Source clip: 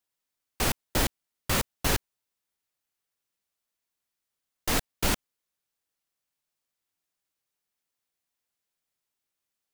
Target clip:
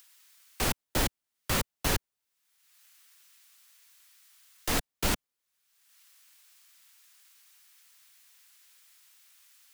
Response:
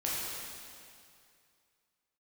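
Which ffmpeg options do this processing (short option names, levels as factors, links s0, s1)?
-filter_complex "[0:a]acrossover=split=140|1100[s0][s1][s2];[s2]acompressor=mode=upward:threshold=0.0158:ratio=2.5[s3];[s0][s1][s3]amix=inputs=3:normalize=0,volume=0.794"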